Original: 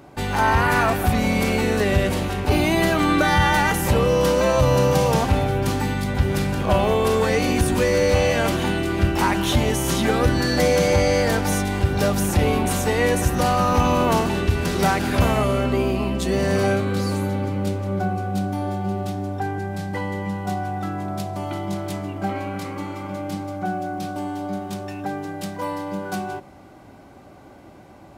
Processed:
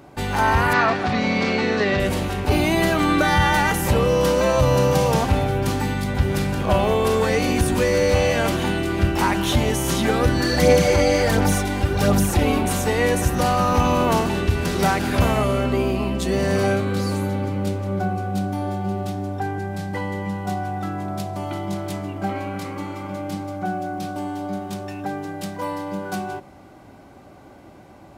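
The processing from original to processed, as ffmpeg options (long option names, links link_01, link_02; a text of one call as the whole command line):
ffmpeg -i in.wav -filter_complex "[0:a]asettb=1/sr,asplit=3[link_01][link_02][link_03];[link_01]atrim=end=0.734[link_04];[link_02]atrim=start=0.73:end=2,asetpts=PTS-STARTPTS,afade=type=in:duration=0.004:curve=qsin,afade=type=out:start_time=1.266:duration=0.004:curve=qsin,highpass=140,equalizer=frequency=1200:width_type=q:width=4:gain=3,equalizer=frequency=1900:width_type=q:width=4:gain=4,equalizer=frequency=4300:width_type=q:width=4:gain=4,lowpass=frequency=5600:width=0.5412,lowpass=frequency=5600:width=1.3066[link_05];[link_03]atrim=start=1.996[link_06];[link_04][link_05]acrossfade=duration=0.004:curve1=hsin:curve2=qsin[link_07];[link_07][link_06]acrossfade=duration=0.004:curve1=qsin:curve2=hsin,asplit=3[link_08][link_09][link_10];[link_08]afade=type=out:start_time=10.42:duration=0.02[link_11];[link_09]aphaser=in_gain=1:out_gain=1:delay=3.8:decay=0.45:speed=1.4:type=sinusoidal,afade=type=in:start_time=10.42:duration=0.02,afade=type=out:start_time=12.6:duration=0.02[link_12];[link_10]afade=type=in:start_time=12.6:duration=0.02[link_13];[link_11][link_12][link_13]amix=inputs=3:normalize=0" out.wav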